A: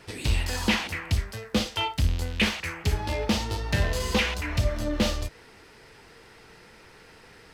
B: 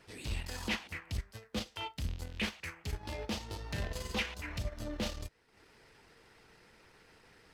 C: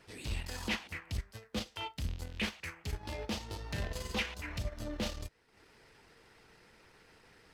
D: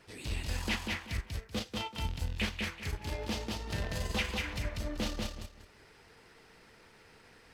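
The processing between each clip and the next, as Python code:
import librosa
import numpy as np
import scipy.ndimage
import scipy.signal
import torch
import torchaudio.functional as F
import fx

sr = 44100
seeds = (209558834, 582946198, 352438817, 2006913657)

y1 = fx.transient(x, sr, attack_db=-6, sustain_db=-10)
y1 = fx.hpss(y1, sr, part='harmonic', gain_db=-4)
y1 = F.gain(torch.from_numpy(y1), -7.5).numpy()
y2 = y1
y3 = fx.echo_feedback(y2, sr, ms=191, feedback_pct=23, wet_db=-3.0)
y3 = F.gain(torch.from_numpy(y3), 1.0).numpy()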